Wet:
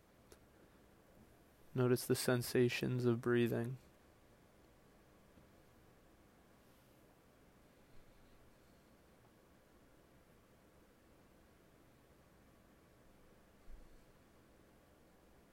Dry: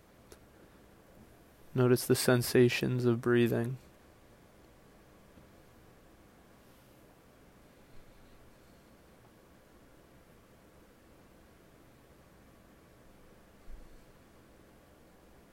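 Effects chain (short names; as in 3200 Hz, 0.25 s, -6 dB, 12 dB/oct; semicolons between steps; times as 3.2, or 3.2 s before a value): vocal rider 0.5 s; gain -7 dB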